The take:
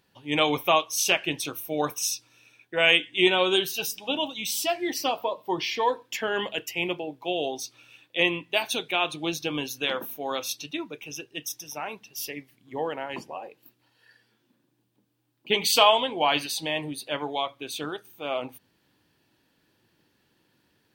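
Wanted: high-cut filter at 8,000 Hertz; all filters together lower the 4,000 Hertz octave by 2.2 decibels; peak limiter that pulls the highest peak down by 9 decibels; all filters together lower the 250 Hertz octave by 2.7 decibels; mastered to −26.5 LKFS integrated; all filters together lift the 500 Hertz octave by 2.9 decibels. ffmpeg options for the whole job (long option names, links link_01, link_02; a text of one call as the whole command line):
ffmpeg -i in.wav -af "lowpass=8000,equalizer=frequency=250:width_type=o:gain=-8.5,equalizer=frequency=500:width_type=o:gain=6,equalizer=frequency=4000:width_type=o:gain=-3,volume=2.5dB,alimiter=limit=-12dB:level=0:latency=1" out.wav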